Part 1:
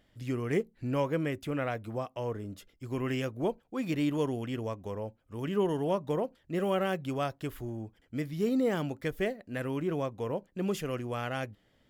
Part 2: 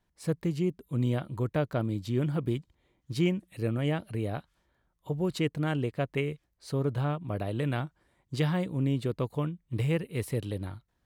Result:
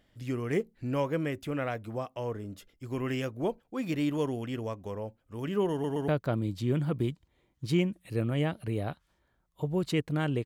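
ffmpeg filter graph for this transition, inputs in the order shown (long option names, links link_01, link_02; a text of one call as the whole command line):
ffmpeg -i cue0.wav -i cue1.wav -filter_complex "[0:a]apad=whole_dur=10.45,atrim=end=10.45,asplit=3[link_01][link_02][link_03];[link_01]atrim=end=5.842[link_04];[link_02]atrim=start=5.718:end=5.842[link_05];[link_03]atrim=start=5.718:end=5.842[link_06];[1:a]atrim=start=1.548:end=5.92[link_07];[link_04][link_05]acrossfade=duration=0.004:curve1=hsin:curve2=hsin[link_08];[link_08][link_06]acrossfade=duration=0.004:curve1=hsin:curve2=hsin[link_09];[link_09][link_07]acrossfade=duration=0.004:curve1=hsin:curve2=hsin" out.wav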